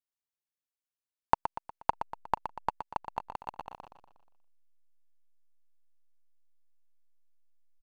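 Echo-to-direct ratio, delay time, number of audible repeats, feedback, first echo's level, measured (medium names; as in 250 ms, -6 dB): -8.0 dB, 120 ms, 4, 47%, -9.0 dB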